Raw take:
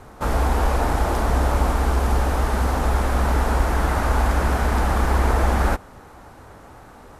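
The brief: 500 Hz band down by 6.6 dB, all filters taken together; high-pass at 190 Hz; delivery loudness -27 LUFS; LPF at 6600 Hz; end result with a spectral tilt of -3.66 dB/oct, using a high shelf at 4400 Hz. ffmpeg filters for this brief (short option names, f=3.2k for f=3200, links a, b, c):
-af "highpass=190,lowpass=6.6k,equalizer=f=500:t=o:g=-8.5,highshelf=f=4.4k:g=-6,volume=1dB"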